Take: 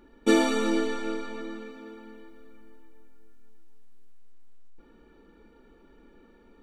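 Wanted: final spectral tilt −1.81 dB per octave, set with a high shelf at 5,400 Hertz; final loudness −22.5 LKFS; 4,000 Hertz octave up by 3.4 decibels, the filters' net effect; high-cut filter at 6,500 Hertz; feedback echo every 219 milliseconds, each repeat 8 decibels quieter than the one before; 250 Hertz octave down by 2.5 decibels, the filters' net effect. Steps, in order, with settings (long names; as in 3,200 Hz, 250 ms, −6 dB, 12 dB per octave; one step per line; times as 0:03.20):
low-pass filter 6,500 Hz
parametric band 250 Hz −3.5 dB
parametric band 4,000 Hz +6.5 dB
high-shelf EQ 5,400 Hz −5 dB
repeating echo 219 ms, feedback 40%, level −8 dB
level +5 dB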